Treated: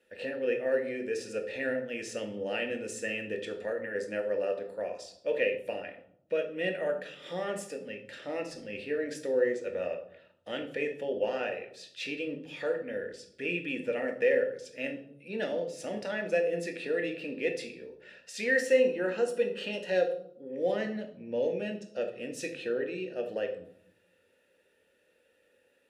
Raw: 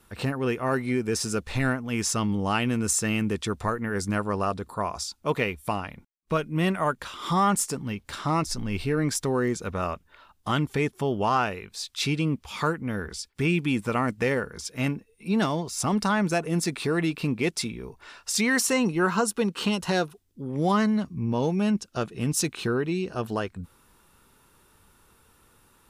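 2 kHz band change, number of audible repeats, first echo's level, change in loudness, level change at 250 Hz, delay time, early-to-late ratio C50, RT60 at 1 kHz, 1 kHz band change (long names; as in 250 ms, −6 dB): −4.0 dB, no echo audible, no echo audible, −6.0 dB, −12.5 dB, no echo audible, 9.0 dB, 0.65 s, −16.0 dB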